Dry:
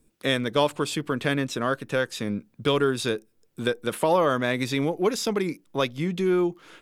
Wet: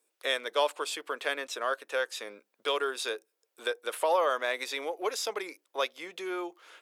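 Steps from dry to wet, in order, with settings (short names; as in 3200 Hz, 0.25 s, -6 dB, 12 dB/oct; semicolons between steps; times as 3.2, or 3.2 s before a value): HPF 480 Hz 24 dB/oct; gain -3.5 dB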